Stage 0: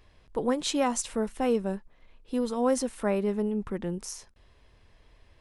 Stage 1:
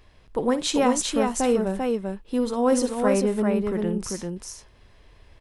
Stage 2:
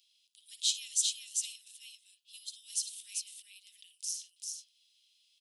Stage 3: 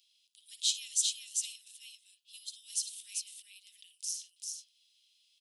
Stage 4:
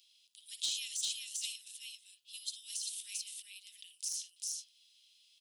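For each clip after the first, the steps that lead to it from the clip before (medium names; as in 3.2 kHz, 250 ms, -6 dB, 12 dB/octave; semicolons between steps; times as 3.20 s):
multi-tap echo 56/393 ms -14.5/-3.5 dB; trim +4 dB
steep high-pass 3 kHz 48 dB/octave; trim -1.5 dB
no audible change
de-esser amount 75%; trim +3.5 dB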